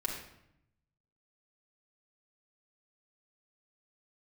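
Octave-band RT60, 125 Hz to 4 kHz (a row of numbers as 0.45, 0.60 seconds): 1.3, 1.1, 0.80, 0.75, 0.70, 0.60 seconds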